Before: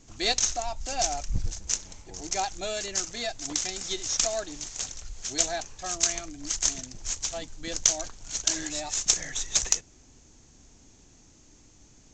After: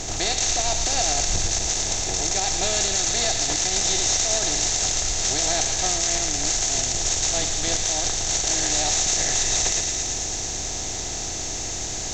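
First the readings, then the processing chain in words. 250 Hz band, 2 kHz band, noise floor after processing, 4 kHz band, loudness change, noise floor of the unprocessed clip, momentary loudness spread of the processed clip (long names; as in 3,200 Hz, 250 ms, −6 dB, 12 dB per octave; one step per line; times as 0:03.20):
+6.5 dB, +8.0 dB, −29 dBFS, +8.5 dB, +7.0 dB, −56 dBFS, 7 LU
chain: compressor on every frequency bin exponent 0.4
brickwall limiter −12 dBFS, peak gain reduction 11.5 dB
feedback echo with a high-pass in the loop 112 ms, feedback 85%, high-pass 1,100 Hz, level −6 dB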